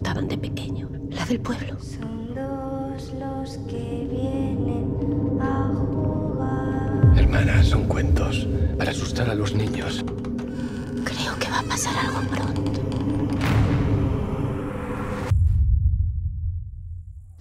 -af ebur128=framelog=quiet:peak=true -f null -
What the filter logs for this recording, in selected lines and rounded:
Integrated loudness:
  I:         -24.3 LUFS
  Threshold: -34.4 LUFS
Loudness range:
  LRA:         8.1 LU
  Threshold: -44.1 LUFS
  LRA low:   -29.1 LUFS
  LRA high:  -21.0 LUFS
True peak:
  Peak:       -4.9 dBFS